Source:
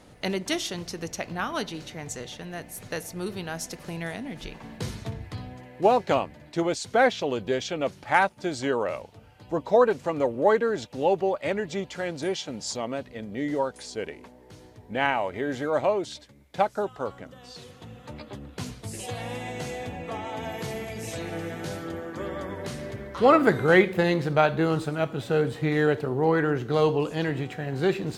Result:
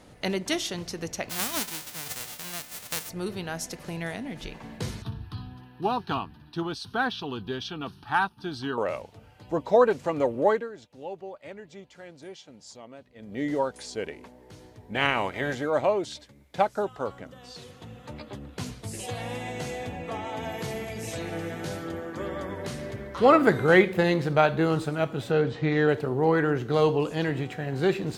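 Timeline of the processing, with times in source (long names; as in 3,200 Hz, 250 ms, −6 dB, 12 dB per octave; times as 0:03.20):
0:01.29–0:03.08: spectral envelope flattened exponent 0.1
0:05.02–0:08.78: phaser with its sweep stopped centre 2,100 Hz, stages 6
0:10.43–0:13.41: duck −14.5 dB, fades 0.26 s
0:14.94–0:15.53: ceiling on every frequency bin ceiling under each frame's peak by 15 dB
0:25.31–0:25.89: low-pass filter 5,900 Hz 24 dB per octave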